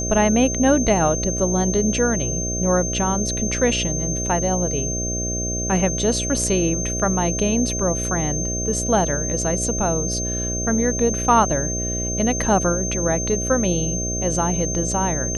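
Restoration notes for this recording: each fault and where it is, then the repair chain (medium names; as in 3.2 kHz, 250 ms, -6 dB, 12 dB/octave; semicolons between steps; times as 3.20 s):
buzz 60 Hz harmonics 11 -27 dBFS
whine 6.3 kHz -25 dBFS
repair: de-hum 60 Hz, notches 11; band-stop 6.3 kHz, Q 30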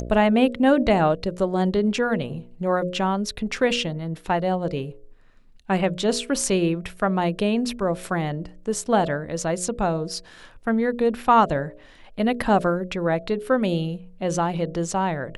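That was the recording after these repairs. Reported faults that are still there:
nothing left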